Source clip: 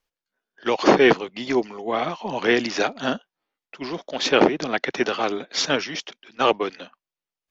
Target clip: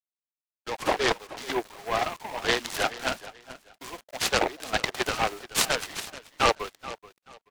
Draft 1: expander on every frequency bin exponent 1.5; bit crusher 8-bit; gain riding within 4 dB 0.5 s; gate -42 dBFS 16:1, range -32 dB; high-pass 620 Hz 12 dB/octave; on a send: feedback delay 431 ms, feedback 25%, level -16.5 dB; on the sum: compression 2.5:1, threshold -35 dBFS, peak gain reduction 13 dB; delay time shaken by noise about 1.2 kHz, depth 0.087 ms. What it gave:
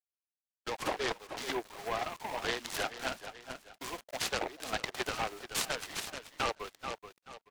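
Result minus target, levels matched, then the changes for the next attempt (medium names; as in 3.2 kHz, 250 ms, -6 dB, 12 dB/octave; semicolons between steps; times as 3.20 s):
compression: peak gain reduction +13 dB
remove: compression 2.5:1, threshold -35 dBFS, peak gain reduction 13 dB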